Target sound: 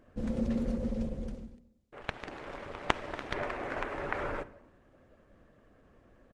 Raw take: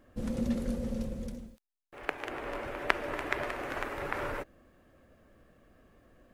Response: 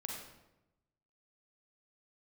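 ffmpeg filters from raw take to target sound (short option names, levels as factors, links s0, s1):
-filter_complex "[0:a]aemphasis=mode=reproduction:type=cd,bandreject=f=60:t=h:w=6,bandreject=f=120:t=h:w=6,bandreject=f=180:t=h:w=6,bandreject=f=240:t=h:w=6,bandreject=f=300:t=h:w=6,bandreject=f=360:t=h:w=6,asplit=3[s0][s1][s2];[s0]afade=t=out:st=2:d=0.02[s3];[s1]aeval=exprs='max(val(0),0)':c=same,afade=t=in:st=2:d=0.02,afade=t=out:st=3.33:d=0.02[s4];[s2]afade=t=in:st=3.33:d=0.02[s5];[s3][s4][s5]amix=inputs=3:normalize=0,aresample=22050,aresample=44100,asplit=2[s6][s7];[1:a]atrim=start_sample=2205[s8];[s7][s8]afir=irnorm=-1:irlink=0,volume=0.224[s9];[s6][s9]amix=inputs=2:normalize=0" -ar 48000 -c:a libopus -b:a 16k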